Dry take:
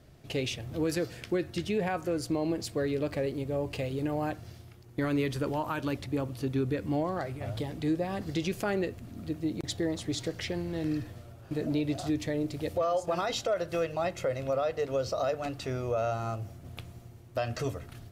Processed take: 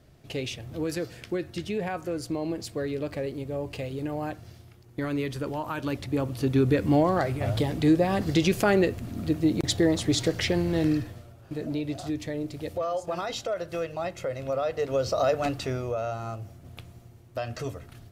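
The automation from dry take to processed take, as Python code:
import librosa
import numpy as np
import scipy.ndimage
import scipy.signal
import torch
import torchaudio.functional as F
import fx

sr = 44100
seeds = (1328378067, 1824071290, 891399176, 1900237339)

y = fx.gain(x, sr, db=fx.line((5.58, -0.5), (6.75, 8.5), (10.81, 8.5), (11.33, -1.0), (14.29, -1.0), (15.46, 7.5), (16.0, -1.0)))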